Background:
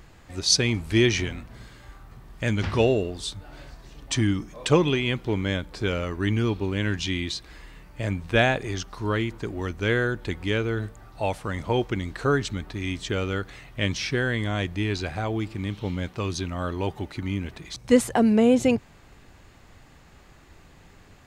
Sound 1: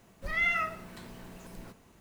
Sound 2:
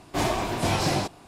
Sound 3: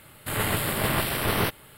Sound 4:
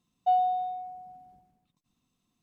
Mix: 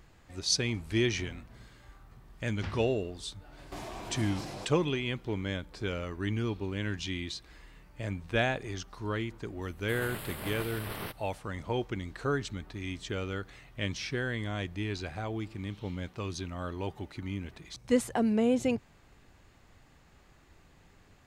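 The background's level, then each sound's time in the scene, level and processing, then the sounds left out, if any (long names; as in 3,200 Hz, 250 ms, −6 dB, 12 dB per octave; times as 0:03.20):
background −8 dB
0:03.58: mix in 2 −7 dB + downward compressor, threshold −31 dBFS
0:09.62: mix in 3 −14.5 dB
not used: 1, 4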